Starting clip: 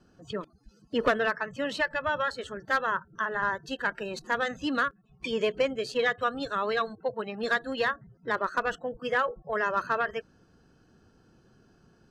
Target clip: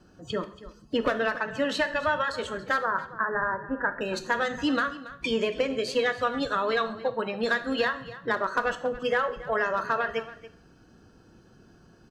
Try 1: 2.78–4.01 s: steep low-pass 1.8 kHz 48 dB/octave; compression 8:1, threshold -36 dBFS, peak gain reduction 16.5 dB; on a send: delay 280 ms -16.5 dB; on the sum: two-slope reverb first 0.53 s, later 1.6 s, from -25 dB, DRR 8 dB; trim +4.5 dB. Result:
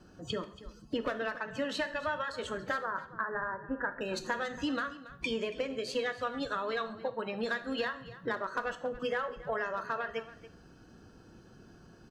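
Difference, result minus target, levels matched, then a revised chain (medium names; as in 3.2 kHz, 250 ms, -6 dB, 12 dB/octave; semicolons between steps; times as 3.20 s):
compression: peak gain reduction +8.5 dB
2.78–4.01 s: steep low-pass 1.8 kHz 48 dB/octave; compression 8:1, threshold -26.5 dBFS, peak gain reduction 8.5 dB; on a send: delay 280 ms -16.5 dB; on the sum: two-slope reverb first 0.53 s, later 1.6 s, from -25 dB, DRR 8 dB; trim +4.5 dB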